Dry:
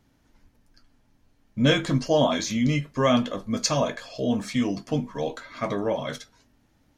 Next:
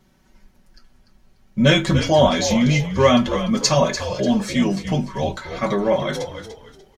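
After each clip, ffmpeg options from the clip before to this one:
ffmpeg -i in.wav -filter_complex "[0:a]aecho=1:1:5.3:0.89,asplit=2[link_01][link_02];[link_02]asplit=3[link_03][link_04][link_05];[link_03]adelay=294,afreqshift=-57,volume=-10dB[link_06];[link_04]adelay=588,afreqshift=-114,volume=-20.5dB[link_07];[link_05]adelay=882,afreqshift=-171,volume=-30.9dB[link_08];[link_06][link_07][link_08]amix=inputs=3:normalize=0[link_09];[link_01][link_09]amix=inputs=2:normalize=0,volume=4dB" out.wav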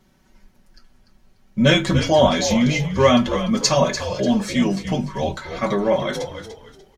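ffmpeg -i in.wav -af "bandreject=frequency=50:width_type=h:width=6,bandreject=frequency=100:width_type=h:width=6,bandreject=frequency=150:width_type=h:width=6" out.wav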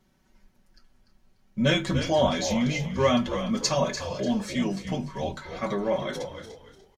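ffmpeg -i in.wav -af "aecho=1:1:324:0.15,volume=-7.5dB" out.wav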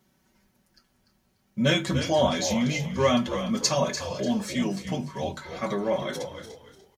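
ffmpeg -i in.wav -af "highpass=65,highshelf=frequency=8900:gain=9" out.wav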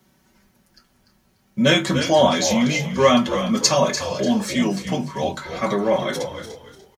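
ffmpeg -i in.wav -filter_complex "[0:a]acrossover=split=140|920|1800[link_01][link_02][link_03][link_04];[link_01]acompressor=threshold=-46dB:ratio=6[link_05];[link_03]asplit=2[link_06][link_07];[link_07]adelay=24,volume=-2.5dB[link_08];[link_06][link_08]amix=inputs=2:normalize=0[link_09];[link_05][link_02][link_09][link_04]amix=inputs=4:normalize=0,volume=7dB" out.wav

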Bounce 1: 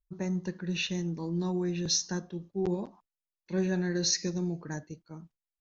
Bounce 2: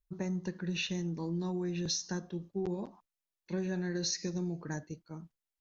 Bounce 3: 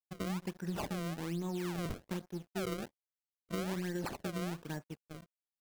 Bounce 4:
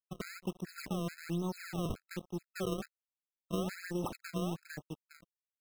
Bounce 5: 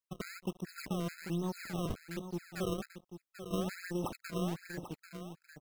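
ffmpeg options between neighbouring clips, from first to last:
ffmpeg -i in.wav -af "acompressor=threshold=-31dB:ratio=6" out.wav
ffmpeg -i in.wav -af "aresample=11025,aeval=exprs='sgn(val(0))*max(abs(val(0))-0.00282,0)':channel_layout=same,aresample=44100,acrusher=samples=29:mix=1:aa=0.000001:lfo=1:lforange=46.4:lforate=1.2,volume=-1.5dB" out.wav
ffmpeg -i in.wav -af "aeval=exprs='sgn(val(0))*max(abs(val(0))-0.00158,0)':channel_layout=same,afftfilt=real='re*gt(sin(2*PI*2.3*pts/sr)*(1-2*mod(floor(b*sr/1024/1300),2)),0)':imag='im*gt(sin(2*PI*2.3*pts/sr)*(1-2*mod(floor(b*sr/1024/1300),2)),0)':win_size=1024:overlap=0.75,volume=3.5dB" out.wav
ffmpeg -i in.wav -af "aecho=1:1:790:0.316" out.wav

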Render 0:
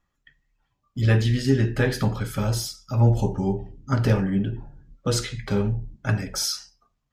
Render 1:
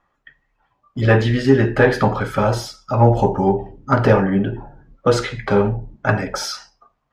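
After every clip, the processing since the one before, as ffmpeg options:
ffmpeg -i in.wav -filter_complex "[0:a]equalizer=frequency=810:width_type=o:width=2.4:gain=6.5,asplit=2[link_01][link_02];[link_02]highpass=frequency=720:poles=1,volume=10dB,asoftclip=type=tanh:threshold=-5dB[link_03];[link_01][link_03]amix=inputs=2:normalize=0,lowpass=frequency=1100:poles=1,volume=-6dB,volume=6.5dB" out.wav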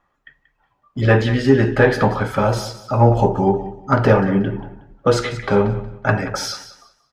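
ffmpeg -i in.wav -af "aecho=1:1:183|366|549:0.188|0.0452|0.0108" out.wav

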